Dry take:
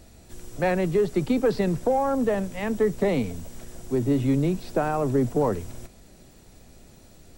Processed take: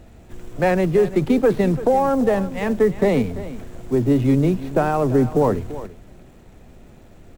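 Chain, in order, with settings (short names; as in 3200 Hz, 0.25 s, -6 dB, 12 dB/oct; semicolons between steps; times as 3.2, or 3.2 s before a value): median filter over 9 samples; on a send: echo 0.34 s -15 dB; on the sum: gain +5.5 dB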